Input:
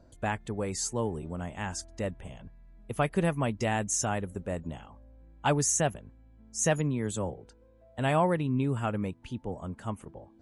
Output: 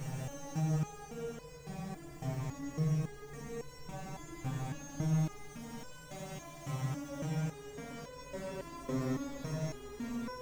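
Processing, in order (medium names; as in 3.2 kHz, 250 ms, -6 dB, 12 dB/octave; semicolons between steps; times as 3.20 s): harmonic-percussive separation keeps harmonic; low-pass that closes with the level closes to 1.8 kHz, closed at -27.5 dBFS; slow attack 766 ms; power-law waveshaper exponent 0.5; saturation -37 dBFS, distortion -7 dB; echo with a slow build-up 153 ms, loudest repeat 5, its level -8.5 dB; Paulstretch 40×, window 0.10 s, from 6.69 s; resonator arpeggio 3.6 Hz 130–500 Hz; trim +9.5 dB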